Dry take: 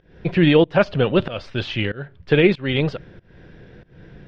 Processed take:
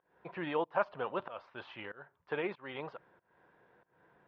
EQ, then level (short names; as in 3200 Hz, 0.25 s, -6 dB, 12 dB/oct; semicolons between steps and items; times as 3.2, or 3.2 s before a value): band-pass 990 Hz, Q 3.2; -4.5 dB